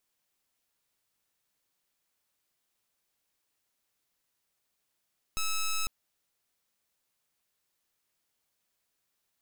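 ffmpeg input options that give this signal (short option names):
-f lavfi -i "aevalsrc='0.0335*(2*lt(mod(1300*t,1),0.09)-1)':d=0.5:s=44100"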